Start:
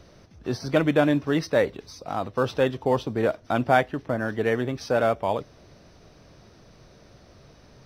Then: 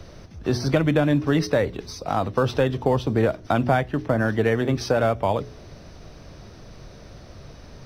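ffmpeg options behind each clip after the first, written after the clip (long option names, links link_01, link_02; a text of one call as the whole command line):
ffmpeg -i in.wav -filter_complex "[0:a]lowshelf=frequency=86:gain=8.5,bandreject=frequency=60.95:width_type=h:width=4,bandreject=frequency=121.9:width_type=h:width=4,bandreject=frequency=182.85:width_type=h:width=4,bandreject=frequency=243.8:width_type=h:width=4,bandreject=frequency=304.75:width_type=h:width=4,bandreject=frequency=365.7:width_type=h:width=4,bandreject=frequency=426.65:width_type=h:width=4,acrossover=split=150[link_01][link_02];[link_02]acompressor=threshold=-24dB:ratio=6[link_03];[link_01][link_03]amix=inputs=2:normalize=0,volume=6.5dB" out.wav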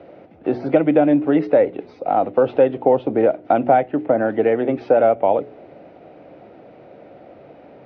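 ffmpeg -i in.wav -af "highpass=260,equalizer=frequency=300:width_type=q:width=4:gain=6,equalizer=frequency=530:width_type=q:width=4:gain=6,equalizer=frequency=750:width_type=q:width=4:gain=7,equalizer=frequency=1100:width_type=q:width=4:gain=-9,equalizer=frequency=1700:width_type=q:width=4:gain=-7,lowpass=frequency=2400:width=0.5412,lowpass=frequency=2400:width=1.3066,volume=2.5dB" out.wav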